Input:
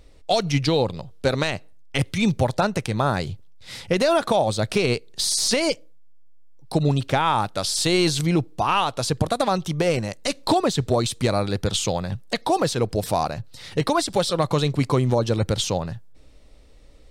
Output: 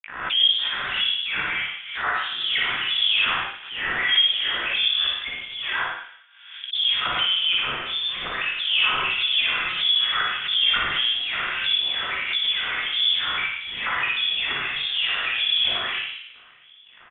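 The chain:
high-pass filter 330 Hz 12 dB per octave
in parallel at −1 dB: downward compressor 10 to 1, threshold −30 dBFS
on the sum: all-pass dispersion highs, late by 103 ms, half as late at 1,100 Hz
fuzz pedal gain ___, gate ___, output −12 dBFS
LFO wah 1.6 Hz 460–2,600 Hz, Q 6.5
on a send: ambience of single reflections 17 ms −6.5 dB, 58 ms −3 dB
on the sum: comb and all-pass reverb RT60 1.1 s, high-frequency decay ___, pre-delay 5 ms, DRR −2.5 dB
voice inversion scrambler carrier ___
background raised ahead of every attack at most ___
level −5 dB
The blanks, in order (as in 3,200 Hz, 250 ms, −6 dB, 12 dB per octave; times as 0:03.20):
44 dB, −51 dBFS, 0.45×, 3,900 Hz, 68 dB per second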